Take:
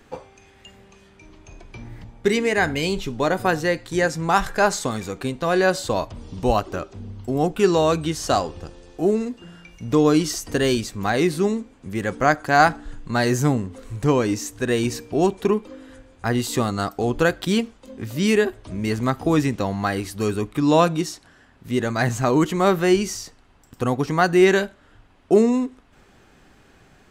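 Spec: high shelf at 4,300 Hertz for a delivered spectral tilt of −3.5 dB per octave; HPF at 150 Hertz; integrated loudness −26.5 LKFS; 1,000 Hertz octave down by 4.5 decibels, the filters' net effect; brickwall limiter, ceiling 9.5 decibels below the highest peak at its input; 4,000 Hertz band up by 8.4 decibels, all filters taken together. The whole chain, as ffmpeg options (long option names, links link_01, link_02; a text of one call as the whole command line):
ffmpeg -i in.wav -af "highpass=150,equalizer=frequency=1000:width_type=o:gain=-7.5,equalizer=frequency=4000:width_type=o:gain=7,highshelf=frequency=4300:gain=7,volume=-3dB,alimiter=limit=-13.5dB:level=0:latency=1" out.wav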